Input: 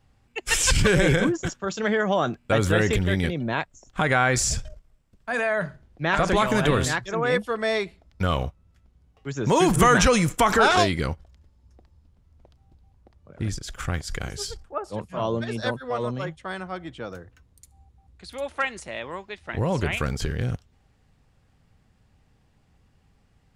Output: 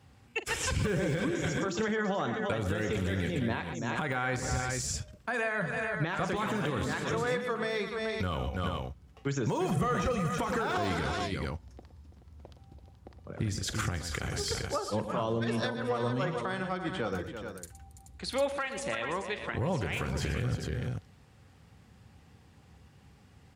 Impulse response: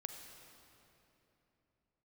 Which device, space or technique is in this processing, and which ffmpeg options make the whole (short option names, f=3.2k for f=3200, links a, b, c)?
podcast mastering chain: -filter_complex "[0:a]bandreject=f=640:w=12,asplit=3[a][b][c];[a]afade=t=out:st=9.65:d=0.02[d];[b]aecho=1:1:1.6:0.64,afade=t=in:st=9.65:d=0.02,afade=t=out:st=10.38:d=0.02[e];[c]afade=t=in:st=10.38:d=0.02[f];[d][e][f]amix=inputs=3:normalize=0,highpass=f=65:w=0.5412,highpass=f=65:w=1.3066,aecho=1:1:43|116|120|334|429:0.178|0.2|0.112|0.224|0.224,deesser=0.75,acompressor=threshold=-30dB:ratio=3,alimiter=level_in=2.5dB:limit=-24dB:level=0:latency=1:release=394,volume=-2.5dB,volume=6dB" -ar 48000 -c:a libmp3lame -b:a 96k